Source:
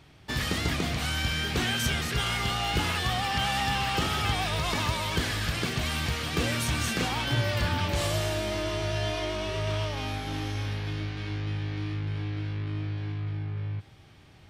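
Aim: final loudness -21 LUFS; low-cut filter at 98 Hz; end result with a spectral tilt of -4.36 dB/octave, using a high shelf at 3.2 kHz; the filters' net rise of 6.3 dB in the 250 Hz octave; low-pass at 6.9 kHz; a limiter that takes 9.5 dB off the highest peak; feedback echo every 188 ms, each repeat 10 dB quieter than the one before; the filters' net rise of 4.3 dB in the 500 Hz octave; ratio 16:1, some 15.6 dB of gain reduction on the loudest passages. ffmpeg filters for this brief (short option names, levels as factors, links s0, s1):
-af "highpass=98,lowpass=6900,equalizer=f=250:t=o:g=7.5,equalizer=f=500:t=o:g=3.5,highshelf=f=3200:g=7.5,acompressor=threshold=0.0158:ratio=16,alimiter=level_in=3.16:limit=0.0631:level=0:latency=1,volume=0.316,aecho=1:1:188|376|564|752:0.316|0.101|0.0324|0.0104,volume=11.2"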